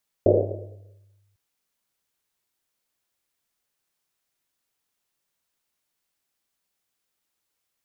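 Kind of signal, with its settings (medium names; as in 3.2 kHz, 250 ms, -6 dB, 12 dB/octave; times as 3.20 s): Risset drum, pitch 100 Hz, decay 1.50 s, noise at 480 Hz, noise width 290 Hz, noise 70%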